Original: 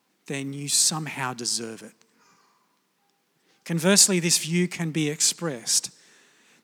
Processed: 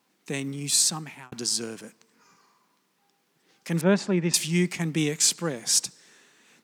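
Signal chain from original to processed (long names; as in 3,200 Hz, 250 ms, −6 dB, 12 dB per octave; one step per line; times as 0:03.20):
0:00.74–0:01.32: fade out
0:03.81–0:04.34: Bessel low-pass filter 1,400 Hz, order 2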